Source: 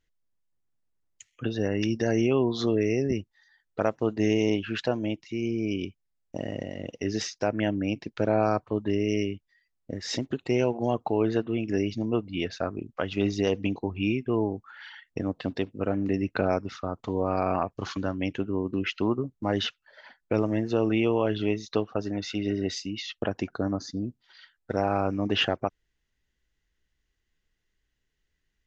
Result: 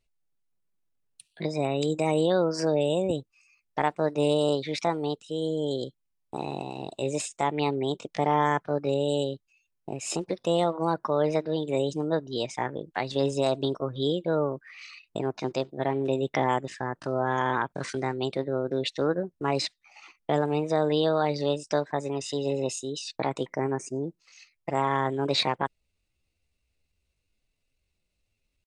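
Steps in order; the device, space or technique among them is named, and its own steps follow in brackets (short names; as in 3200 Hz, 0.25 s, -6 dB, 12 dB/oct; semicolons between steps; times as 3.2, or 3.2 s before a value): chipmunk voice (pitch shift +5.5 st)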